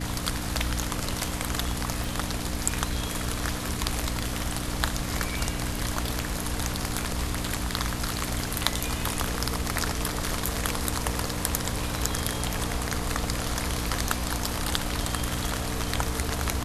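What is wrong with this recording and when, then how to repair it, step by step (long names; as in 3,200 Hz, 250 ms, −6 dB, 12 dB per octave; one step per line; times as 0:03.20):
mains hum 60 Hz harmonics 5 −34 dBFS
0:02.04: click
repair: click removal
hum removal 60 Hz, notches 5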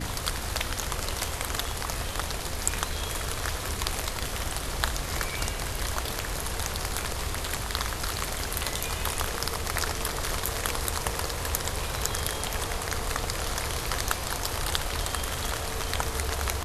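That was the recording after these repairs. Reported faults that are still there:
0:02.04: click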